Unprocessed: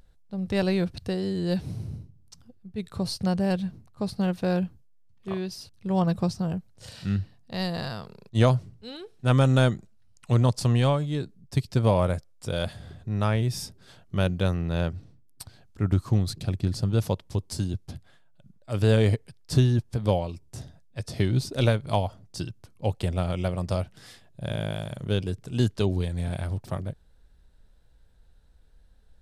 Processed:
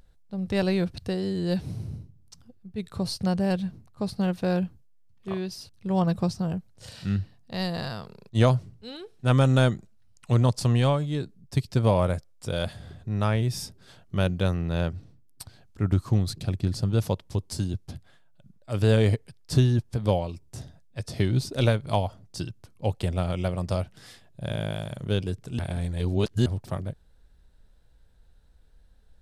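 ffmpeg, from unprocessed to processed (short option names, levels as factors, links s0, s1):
-filter_complex "[0:a]asplit=3[s0][s1][s2];[s0]atrim=end=25.592[s3];[s1]atrim=start=25.588:end=26.462,asetpts=PTS-STARTPTS,areverse[s4];[s2]atrim=start=26.458[s5];[s3][s4]acrossfade=d=0.004:c1=hsin:c2=hsin[s6];[s6][s5]acrossfade=d=0.004:c1=hsin:c2=hsin"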